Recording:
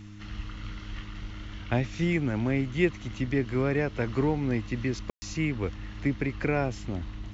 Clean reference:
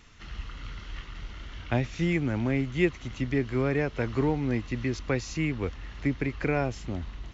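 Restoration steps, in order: de-hum 103.3 Hz, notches 3; room tone fill 5.10–5.22 s

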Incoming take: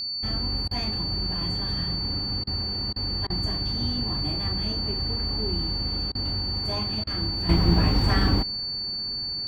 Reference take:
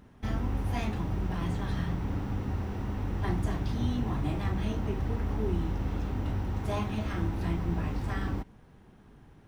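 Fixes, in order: band-stop 4.5 kHz, Q 30; interpolate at 0.68/2.44/2.93/3.27/6.12/7.04 s, 29 ms; gain correction -10.5 dB, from 7.49 s

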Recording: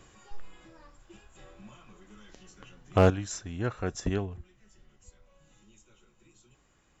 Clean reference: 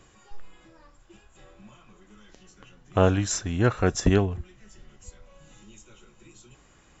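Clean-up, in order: clip repair -12 dBFS; trim 0 dB, from 3.10 s +9.5 dB

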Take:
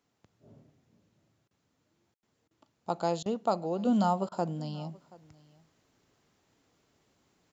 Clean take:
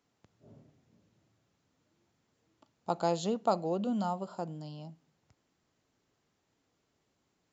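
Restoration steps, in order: room tone fill 2.14–2.23 s; interpolate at 1.48/2.48/3.23/4.29 s, 27 ms; inverse comb 729 ms -23 dB; gain correction -6.5 dB, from 3.85 s

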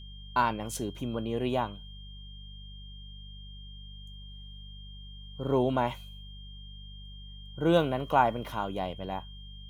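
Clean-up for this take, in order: de-hum 49.3 Hz, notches 4; band-stop 3.2 kHz, Q 30

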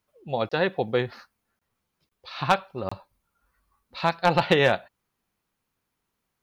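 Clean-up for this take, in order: clip repair -10 dBFS; interpolate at 0.49/1.59/2.09/2.89 s, 25 ms

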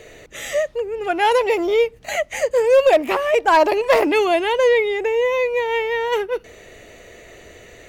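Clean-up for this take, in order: clip repair -7.5 dBFS

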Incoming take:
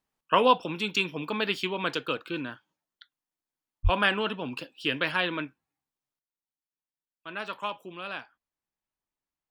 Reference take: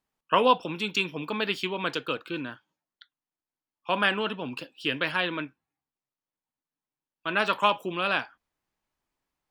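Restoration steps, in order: de-plosive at 3.83 s; gain correction +10.5 dB, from 6.19 s

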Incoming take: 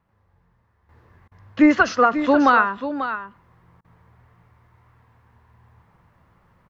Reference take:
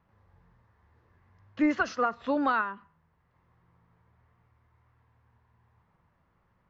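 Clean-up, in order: interpolate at 1.28/3.81 s, 34 ms; inverse comb 541 ms -10.5 dB; trim 0 dB, from 0.89 s -11 dB

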